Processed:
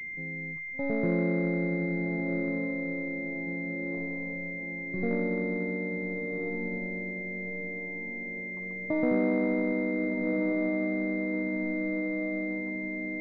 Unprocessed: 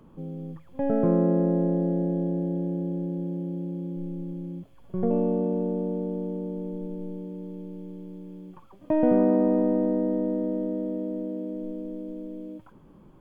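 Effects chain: 3.92–4.36 s: self-modulated delay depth 0.7 ms; echo that smears into a reverb 1401 ms, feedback 55%, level -5 dB; class-D stage that switches slowly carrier 2.1 kHz; trim -5.5 dB

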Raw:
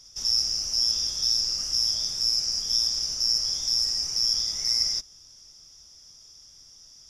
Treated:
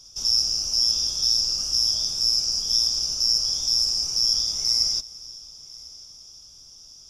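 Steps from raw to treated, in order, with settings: peaking EQ 1.9 kHz -15 dB 0.37 oct; multi-head delay 350 ms, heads first and third, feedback 45%, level -22.5 dB; trim +3 dB

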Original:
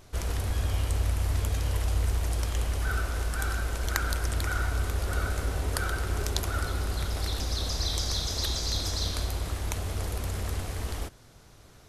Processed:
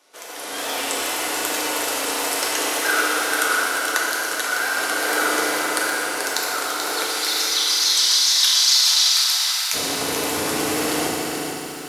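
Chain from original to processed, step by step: Bessel high-pass 520 Hz, order 4, from 7.05 s 1.7 kHz, from 9.73 s 280 Hz; level rider gain up to 14 dB; wow and flutter 110 cents; FDN reverb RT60 3 s, high-frequency decay 0.95×, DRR -3 dB; bit-crushed delay 434 ms, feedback 35%, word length 7-bit, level -6 dB; trim -1.5 dB

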